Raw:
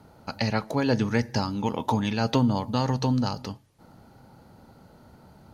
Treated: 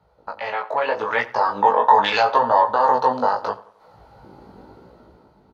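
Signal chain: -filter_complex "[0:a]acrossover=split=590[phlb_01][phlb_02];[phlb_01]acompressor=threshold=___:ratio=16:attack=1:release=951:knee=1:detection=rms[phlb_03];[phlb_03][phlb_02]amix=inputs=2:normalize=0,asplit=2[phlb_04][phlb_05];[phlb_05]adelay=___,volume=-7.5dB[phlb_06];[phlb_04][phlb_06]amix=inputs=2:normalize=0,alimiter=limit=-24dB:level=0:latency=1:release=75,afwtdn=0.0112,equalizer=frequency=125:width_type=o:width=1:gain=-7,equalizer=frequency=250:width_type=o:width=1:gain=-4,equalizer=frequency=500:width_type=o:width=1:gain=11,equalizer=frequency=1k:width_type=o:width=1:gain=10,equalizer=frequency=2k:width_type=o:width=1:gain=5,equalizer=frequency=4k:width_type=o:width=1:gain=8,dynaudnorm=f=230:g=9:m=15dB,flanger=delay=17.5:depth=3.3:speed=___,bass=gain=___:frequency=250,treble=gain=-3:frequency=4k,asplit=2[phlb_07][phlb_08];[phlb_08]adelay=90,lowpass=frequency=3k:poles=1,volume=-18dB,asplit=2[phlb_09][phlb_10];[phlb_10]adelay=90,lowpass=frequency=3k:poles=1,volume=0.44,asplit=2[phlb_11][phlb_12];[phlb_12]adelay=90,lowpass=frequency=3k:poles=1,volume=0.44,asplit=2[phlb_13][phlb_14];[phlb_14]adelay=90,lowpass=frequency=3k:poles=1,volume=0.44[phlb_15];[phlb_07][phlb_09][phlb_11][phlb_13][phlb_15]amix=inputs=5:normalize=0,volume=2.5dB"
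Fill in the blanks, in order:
-33dB, 16, 0.8, -4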